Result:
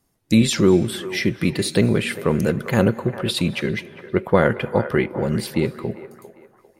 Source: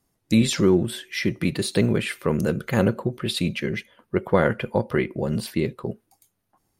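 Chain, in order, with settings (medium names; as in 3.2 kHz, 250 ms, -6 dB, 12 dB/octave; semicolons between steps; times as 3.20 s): feedback echo behind a band-pass 399 ms, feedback 37%, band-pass 930 Hz, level -11 dB; reverberation RT60 1.2 s, pre-delay 188 ms, DRR 19.5 dB; trim +3 dB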